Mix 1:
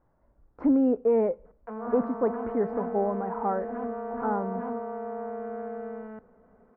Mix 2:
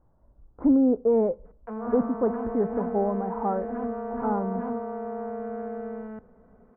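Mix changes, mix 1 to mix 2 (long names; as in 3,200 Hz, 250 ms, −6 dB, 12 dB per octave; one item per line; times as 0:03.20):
speech: add Chebyshev low-pass filter 1,100 Hz, order 2
master: add low-shelf EQ 200 Hz +9 dB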